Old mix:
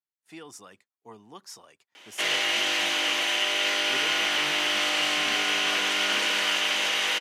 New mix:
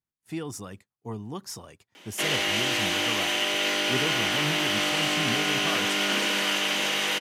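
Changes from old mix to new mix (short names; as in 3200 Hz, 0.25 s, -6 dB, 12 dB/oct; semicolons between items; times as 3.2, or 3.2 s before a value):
speech +5.0 dB; master: remove weighting filter A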